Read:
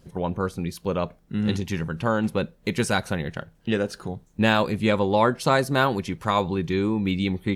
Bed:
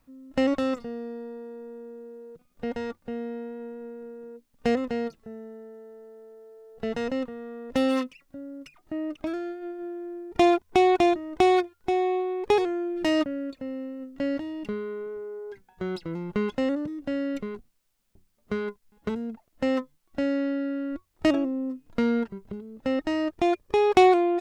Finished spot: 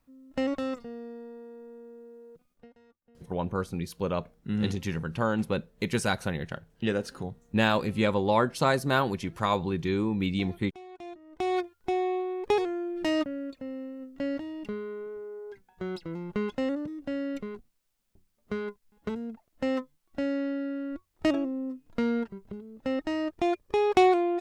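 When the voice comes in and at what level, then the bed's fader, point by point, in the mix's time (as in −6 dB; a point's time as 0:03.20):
3.15 s, −4.0 dB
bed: 0:02.51 −5.5 dB
0:02.72 −27.5 dB
0:10.88 −27.5 dB
0:11.66 −3.5 dB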